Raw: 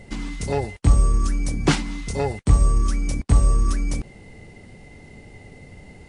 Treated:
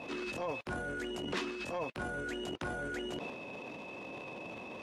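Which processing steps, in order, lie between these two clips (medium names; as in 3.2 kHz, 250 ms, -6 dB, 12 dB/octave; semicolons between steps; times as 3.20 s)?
band-pass 260–2900 Hz; transient shaper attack -10 dB, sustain +11 dB; compression 4:1, threshold -41 dBFS, peak gain reduction 19.5 dB; tape speed +26%; trim +3.5 dB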